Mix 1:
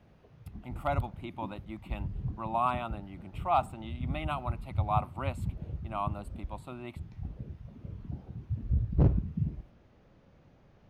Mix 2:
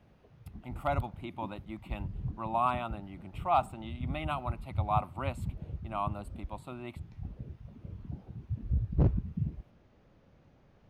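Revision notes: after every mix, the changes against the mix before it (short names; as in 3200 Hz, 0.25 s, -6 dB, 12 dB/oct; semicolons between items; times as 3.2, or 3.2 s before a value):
reverb: off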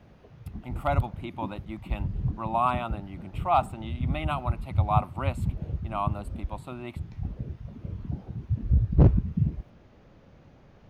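speech +4.0 dB; background +8.0 dB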